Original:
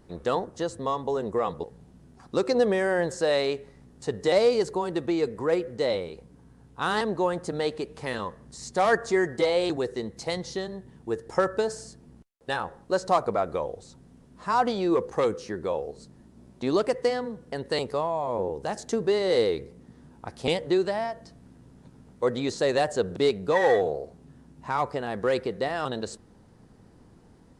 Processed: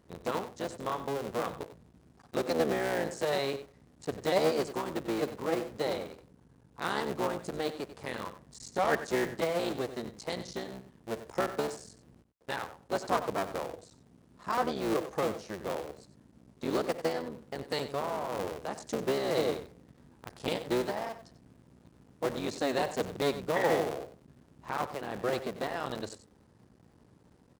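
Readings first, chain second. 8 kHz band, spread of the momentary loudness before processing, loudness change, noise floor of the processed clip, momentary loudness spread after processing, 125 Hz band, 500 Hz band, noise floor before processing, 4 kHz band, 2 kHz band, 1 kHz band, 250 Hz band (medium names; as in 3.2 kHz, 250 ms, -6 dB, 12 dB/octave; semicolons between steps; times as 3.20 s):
-3.0 dB, 13 LU, -6.5 dB, -62 dBFS, 12 LU, -5.0 dB, -7.0 dB, -55 dBFS, -5.0 dB, -5.0 dB, -5.5 dB, -5.5 dB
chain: cycle switcher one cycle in 3, muted; high-pass 53 Hz; on a send: delay 93 ms -12.5 dB; on the sum: trim -5 dB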